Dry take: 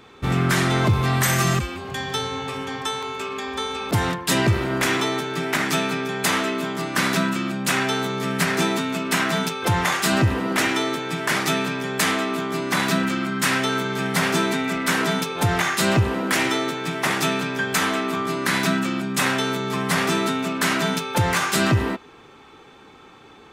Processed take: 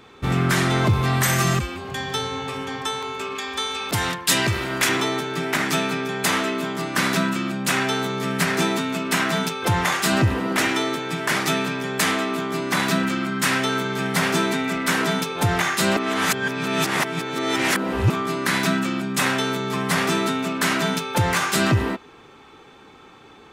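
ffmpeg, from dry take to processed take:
-filter_complex "[0:a]asettb=1/sr,asplit=3[a][b][c];[a]atrim=end=3.354[d];[b]atrim=start=3.35:end=4.89,asetpts=PTS-STARTPTS,afade=t=in:d=0.004:c=qsin,afade=t=out:st=1.536:d=0.004:c=qsin,tiltshelf=f=1.2k:g=-5[e];[c]atrim=start=4.886[f];[d][e]acrossfade=d=0.004:c1=hsin:c2=qsin[g];[g][f]acrossfade=d=0.004:c1=qsin:c2=hsin,asplit=3[h][i][j];[h]atrim=end=15.972[k];[i]atrim=start=15.968:end=18.102,asetpts=PTS-STARTPTS,areverse[l];[j]atrim=start=18.098[m];[k][l]acrossfade=d=0.004:c1=hsin:c2=hsin[n];[n][m]acrossfade=d=0.004:c1=hsin:c2=hsin"

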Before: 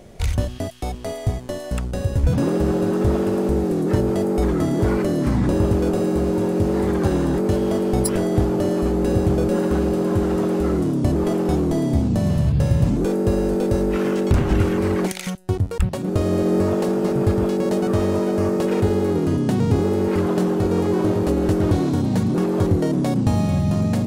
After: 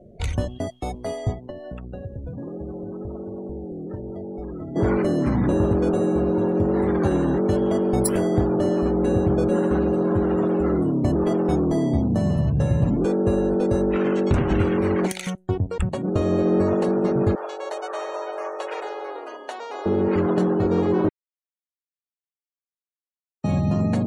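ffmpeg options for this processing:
-filter_complex "[0:a]asettb=1/sr,asplit=3[a][b][c];[a]atrim=end=1.334[d];[b]atrim=start=1.33:end=4.76,asetpts=PTS-STARTPTS,afade=t=in:d=0.004:c=qsin,afade=t=out:st=3.426:d=0.004:c=qsin,acrossover=split=83|5200[e][f][g];[e]acompressor=threshold=-35dB:ratio=4[h];[f]acompressor=threshold=-33dB:ratio=4[i];[g]acompressor=threshold=-58dB:ratio=4[j];[h][i][j]amix=inputs=3:normalize=0[k];[c]atrim=start=4.756[l];[d][k]acrossfade=d=0.004:c1=hsin:c2=qsin[m];[m][l]acrossfade=d=0.004:c1=qsin:c2=hsin,asettb=1/sr,asplit=3[n][o][p];[n]atrim=end=17.354[q];[o]atrim=start=17.35:end=19.86,asetpts=PTS-STARTPTS,afade=t=in:d=0.004:c=qsin,afade=t=out:st=2.506:d=0.004:c=qsin,highpass=f=600:w=0.5412,highpass=f=600:w=1.3066[r];[p]atrim=start=19.856[s];[q][r]acrossfade=d=0.004:c1=hsin:c2=qsin[t];[t][s]acrossfade=d=0.004:c1=qsin:c2=hsin,asplit=3[u][v][w];[u]atrim=end=21.09,asetpts=PTS-STARTPTS,afade=t=out:st=21.086:d=0.004:c=hsin[x];[v]atrim=start=21.09:end=23.44,asetpts=PTS-STARTPTS,volume=0[y];[w]atrim=start=23.44,asetpts=PTS-STARTPTS,afade=t=in:d=0.004:c=hsin[z];[x][y][z]concat=n=3:v=0:a=1,afftdn=nr=30:nf=-40,lowshelf=f=77:g=-8.5,bandreject=f=5k:w=11"

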